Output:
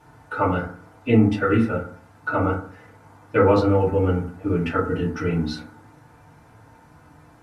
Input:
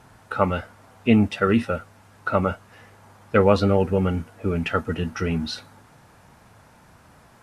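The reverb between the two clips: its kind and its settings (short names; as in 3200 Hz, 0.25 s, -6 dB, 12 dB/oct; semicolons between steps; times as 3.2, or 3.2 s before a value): FDN reverb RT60 0.49 s, low-frequency decay 1.2×, high-frequency decay 0.3×, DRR -7 dB; gain -8 dB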